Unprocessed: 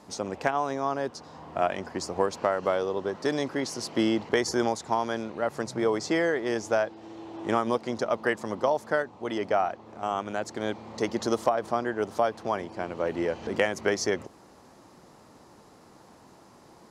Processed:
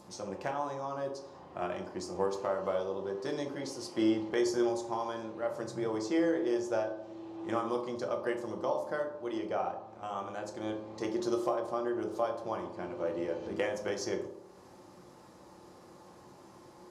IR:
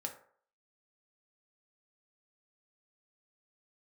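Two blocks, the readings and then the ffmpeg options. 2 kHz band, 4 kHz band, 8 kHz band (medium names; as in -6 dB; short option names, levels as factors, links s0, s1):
-11.0 dB, -8.5 dB, -8.5 dB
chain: -filter_complex "[0:a]adynamicequalizer=threshold=0.00447:dfrequency=1800:dqfactor=1.9:tfrequency=1800:tqfactor=1.9:attack=5:release=100:ratio=0.375:range=2.5:mode=cutabove:tftype=bell,acompressor=mode=upward:threshold=0.01:ratio=2.5[s0];[1:a]atrim=start_sample=2205,asetrate=28665,aresample=44100[s1];[s0][s1]afir=irnorm=-1:irlink=0,volume=0.355"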